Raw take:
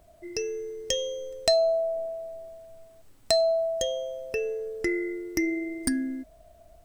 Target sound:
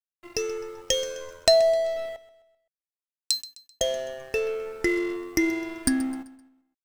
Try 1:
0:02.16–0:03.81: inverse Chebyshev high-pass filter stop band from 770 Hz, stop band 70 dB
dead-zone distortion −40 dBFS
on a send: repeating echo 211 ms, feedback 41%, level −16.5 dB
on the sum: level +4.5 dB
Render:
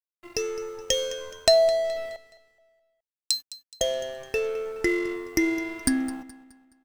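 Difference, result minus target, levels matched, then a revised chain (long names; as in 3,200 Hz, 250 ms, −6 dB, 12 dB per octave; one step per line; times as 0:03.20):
echo 82 ms late
0:02.16–0:03.81: inverse Chebyshev high-pass filter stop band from 770 Hz, stop band 70 dB
dead-zone distortion −40 dBFS
on a send: repeating echo 129 ms, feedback 41%, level −16.5 dB
on the sum: level +4.5 dB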